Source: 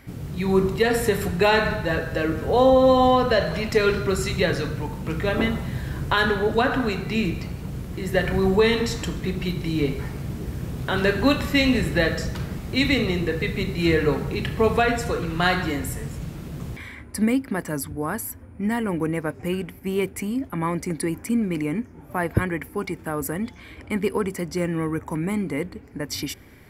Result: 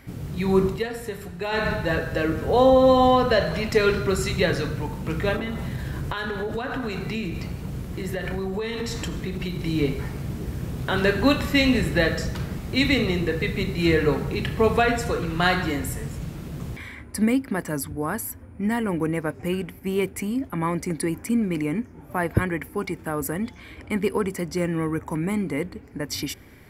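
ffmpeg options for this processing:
-filter_complex "[0:a]asettb=1/sr,asplit=3[s0][s1][s2];[s0]atrim=end=5.364[s3];[s1]atrim=start=5.36:end=9.59,asetpts=PTS-STARTPTS,afade=t=in:d=0.004:c=qsin,afade=t=out:st=4.226:d=0.004:c=qsin,acompressor=threshold=0.0631:ratio=10:attack=3.2:release=140:knee=1:detection=peak[s4];[s2]atrim=start=9.586[s5];[s3][s4]acrossfade=d=0.004:c1=hsin:c2=qsin[s6];[s6][s5]acrossfade=d=0.004:c1=qsin:c2=hsin,asplit=3[s7][s8][s9];[s7]atrim=end=0.87,asetpts=PTS-STARTPTS,afade=t=out:st=0.67:d=0.2:silence=0.281838[s10];[s8]atrim=start=0.87:end=1.49,asetpts=PTS-STARTPTS,volume=0.282[s11];[s9]atrim=start=1.49,asetpts=PTS-STARTPTS,afade=t=in:d=0.2:silence=0.281838[s12];[s10][s11][s12]concat=n=3:v=0:a=1"

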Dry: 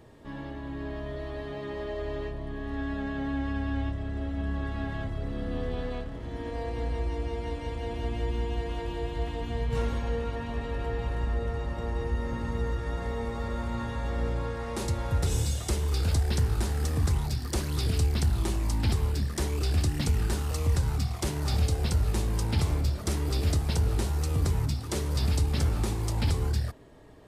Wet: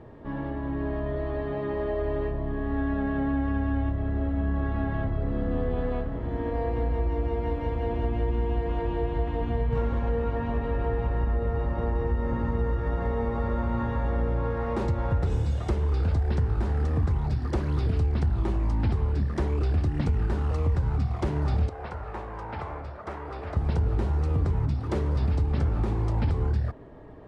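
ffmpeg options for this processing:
-filter_complex "[0:a]asettb=1/sr,asplit=3[s0][s1][s2];[s0]atrim=end=21.694[s3];[s1]atrim=start=21.69:end=23.57,asetpts=PTS-STARTPTS,afade=t=in:d=0.004:c=qsin,afade=t=out:st=1.876:d=0.004:c=qsin,acrossover=split=550 2200:gain=0.112 1 0.224[s4][s5][s6];[s4][s5][s6]amix=inputs=3:normalize=0[s7];[s2]atrim=start=23.566[s8];[s3][s7]acrossfade=d=0.004:c1=hsin:c2=qsin[s9];[s9][s8]acrossfade=d=0.004:c1=qsin:c2=hsin,acompressor=threshold=0.0355:ratio=3,lowpass=1400,aemphasis=mode=production:type=50kf,volume=2.11"

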